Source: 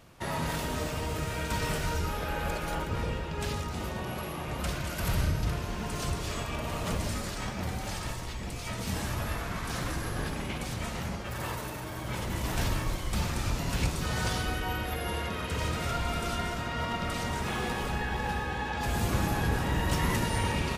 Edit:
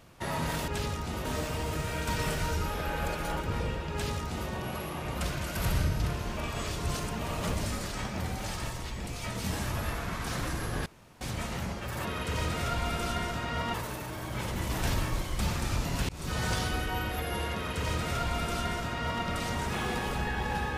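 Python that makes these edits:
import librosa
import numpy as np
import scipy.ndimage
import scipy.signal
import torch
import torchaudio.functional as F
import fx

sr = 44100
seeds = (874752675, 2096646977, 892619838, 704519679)

y = fx.edit(x, sr, fx.duplicate(start_s=3.35, length_s=0.57, to_s=0.68),
    fx.reverse_span(start_s=5.8, length_s=0.82),
    fx.room_tone_fill(start_s=10.29, length_s=0.35),
    fx.fade_in_span(start_s=13.83, length_s=0.34, curve='qsin'),
    fx.duplicate(start_s=15.28, length_s=1.69, to_s=11.48), tone=tone)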